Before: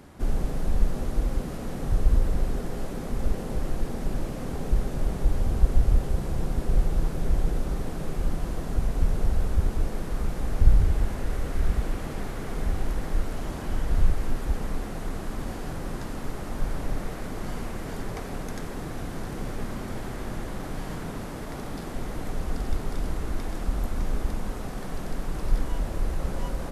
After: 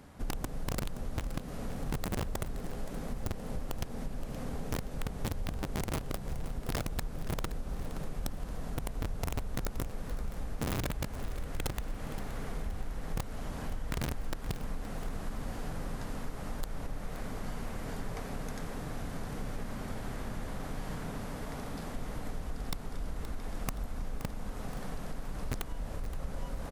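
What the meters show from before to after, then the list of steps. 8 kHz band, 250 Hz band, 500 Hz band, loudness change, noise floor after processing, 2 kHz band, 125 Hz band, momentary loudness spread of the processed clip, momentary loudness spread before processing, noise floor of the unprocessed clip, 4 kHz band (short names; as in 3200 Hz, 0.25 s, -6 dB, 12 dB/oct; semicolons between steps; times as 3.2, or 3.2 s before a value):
-2.0 dB, -6.5 dB, -7.0 dB, -9.0 dB, -42 dBFS, -4.0 dB, -9.0 dB, 5 LU, 9 LU, -35 dBFS, -2.0 dB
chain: bell 350 Hz -10 dB 0.21 oct; wrapped overs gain 15 dB; compressor, threshold -28 dBFS, peak gain reduction 10 dB; on a send: feedback echo 0.522 s, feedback 41%, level -13.5 dB; on the sum: gain -4 dB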